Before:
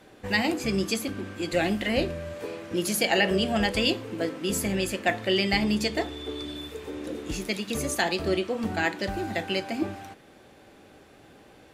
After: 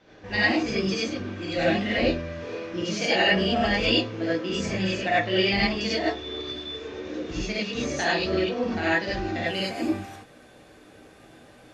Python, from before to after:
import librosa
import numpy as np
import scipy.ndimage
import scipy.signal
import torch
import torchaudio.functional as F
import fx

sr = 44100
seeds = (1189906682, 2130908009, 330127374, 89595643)

y = fx.ellip_lowpass(x, sr, hz=fx.steps((0.0, 6100.0), (9.45, 12000.0)), order=4, stop_db=60)
y = fx.rev_gated(y, sr, seeds[0], gate_ms=120, shape='rising', drr_db=-8.0)
y = F.gain(torch.from_numpy(y), -5.5).numpy()